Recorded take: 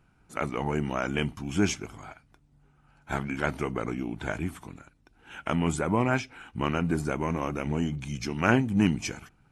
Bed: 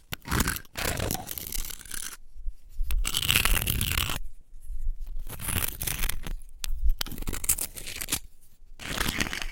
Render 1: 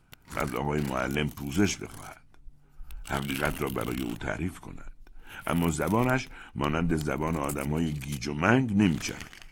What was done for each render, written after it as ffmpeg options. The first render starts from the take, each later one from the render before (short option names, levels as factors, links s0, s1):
-filter_complex "[1:a]volume=0.178[s0];[0:a][s0]amix=inputs=2:normalize=0"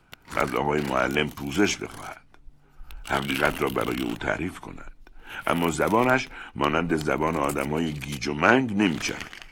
-filter_complex "[0:a]acrossover=split=270|5200[s0][s1][s2];[s0]alimiter=level_in=1.68:limit=0.0631:level=0:latency=1,volume=0.596[s3];[s1]acontrast=81[s4];[s3][s4][s2]amix=inputs=3:normalize=0"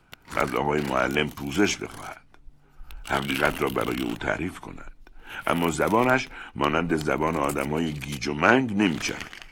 -af anull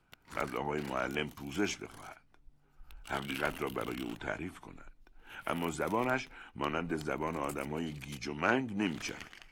-af "volume=0.282"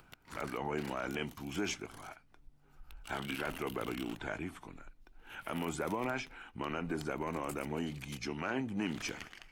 -af "acompressor=mode=upward:threshold=0.00224:ratio=2.5,alimiter=level_in=1.19:limit=0.0631:level=0:latency=1:release=33,volume=0.841"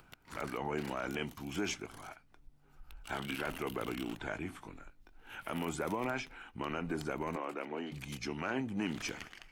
-filter_complex "[0:a]asettb=1/sr,asplit=3[s0][s1][s2];[s0]atrim=end=4.434[s3];[s1]atrim=start=4.43:end=5.38,asetpts=PTS-STARTPTS,afade=t=in:d=0.004:c=qsin,afade=t=out:st=0.946:d=0.004:c=qsin,asplit=2[s4][s5];[s5]adelay=20,volume=0.398[s6];[s4][s6]amix=inputs=2:normalize=0,atrim=end_sample=41895[s7];[s2]atrim=start=5.376[s8];[s3][s7]acrossfade=d=0.004:c1=hsin:c2=qsin[s9];[s9][s8]acrossfade=d=0.004:c1=qsin:c2=hsin,asettb=1/sr,asplit=3[s10][s11][s12];[s10]atrim=end=7.364[s13];[s11]atrim=start=7.36:end=7.92,asetpts=PTS-STARTPTS,afade=t=in:d=0.004:c=qsin,afade=t=out:st=0.556:d=0.004:c=qsin,acrossover=split=240 4000:gain=0.0631 1 0.112[s14][s15][s16];[s14][s15][s16]amix=inputs=3:normalize=0[s17];[s12]atrim=start=7.916[s18];[s13][s17]acrossfade=d=0.004:c1=hsin:c2=qsin[s19];[s19][s18]acrossfade=d=0.004:c1=qsin:c2=hsin"